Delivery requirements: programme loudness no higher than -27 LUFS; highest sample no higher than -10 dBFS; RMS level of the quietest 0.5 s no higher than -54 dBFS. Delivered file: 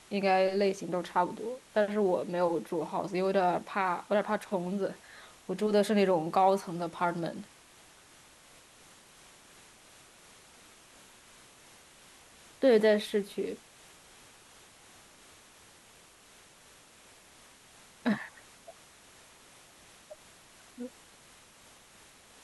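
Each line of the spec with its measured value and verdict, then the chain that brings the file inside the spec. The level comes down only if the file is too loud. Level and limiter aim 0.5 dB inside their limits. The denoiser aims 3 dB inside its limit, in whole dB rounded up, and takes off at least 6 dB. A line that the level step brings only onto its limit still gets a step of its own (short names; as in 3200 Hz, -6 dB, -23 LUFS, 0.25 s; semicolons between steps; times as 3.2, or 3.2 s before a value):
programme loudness -30.0 LUFS: OK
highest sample -13.0 dBFS: OK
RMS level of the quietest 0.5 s -58 dBFS: OK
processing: none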